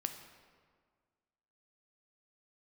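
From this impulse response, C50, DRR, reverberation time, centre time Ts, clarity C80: 8.0 dB, 6.0 dB, 1.8 s, 24 ms, 9.5 dB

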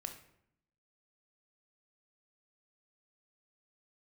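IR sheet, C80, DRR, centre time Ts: 12.5 dB, 5.5 dB, 14 ms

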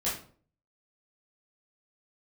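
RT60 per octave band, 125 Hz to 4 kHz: 0.65, 0.55, 0.50, 0.45, 0.35, 0.30 seconds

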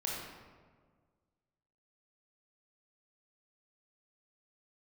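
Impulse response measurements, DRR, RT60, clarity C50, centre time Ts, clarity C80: −4.0 dB, 1.6 s, −1.0 dB, 86 ms, 2.0 dB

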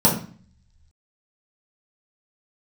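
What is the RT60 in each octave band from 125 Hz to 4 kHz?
1.1, 0.70, 0.40, 0.45, 0.45, 0.40 seconds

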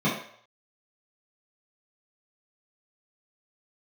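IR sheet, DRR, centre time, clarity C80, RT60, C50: −9.5 dB, 39 ms, 8.0 dB, 0.60 s, 4.5 dB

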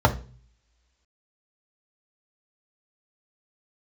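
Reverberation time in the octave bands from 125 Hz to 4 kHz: 0.80, 0.50, 0.40, 0.35, 0.35, 2.0 seconds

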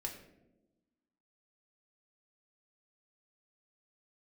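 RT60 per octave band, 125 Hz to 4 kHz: 1.3, 1.6, 1.3, 0.80, 0.65, 0.50 seconds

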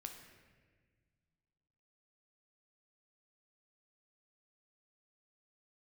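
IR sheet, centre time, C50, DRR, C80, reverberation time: 35 ms, 6.0 dB, 3.5 dB, 8.0 dB, 1.5 s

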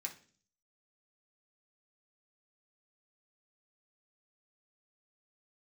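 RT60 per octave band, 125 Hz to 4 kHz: 0.70, 0.65, 0.50, 0.35, 0.40, 0.50 seconds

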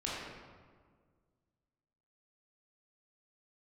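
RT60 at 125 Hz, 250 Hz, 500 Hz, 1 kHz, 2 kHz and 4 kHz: 2.2, 2.1, 1.8, 1.6, 1.3, 0.95 seconds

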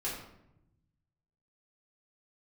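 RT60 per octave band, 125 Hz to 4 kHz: 1.8, 1.3, 0.90, 0.75, 0.65, 0.50 seconds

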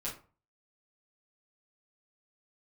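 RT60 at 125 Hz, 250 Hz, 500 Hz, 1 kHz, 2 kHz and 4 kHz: 0.50, 0.40, 0.40, 0.40, 0.30, 0.20 seconds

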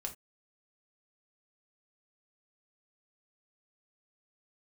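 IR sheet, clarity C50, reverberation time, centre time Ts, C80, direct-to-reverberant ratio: 14.0 dB, non-exponential decay, 10 ms, 22.0 dB, 1.5 dB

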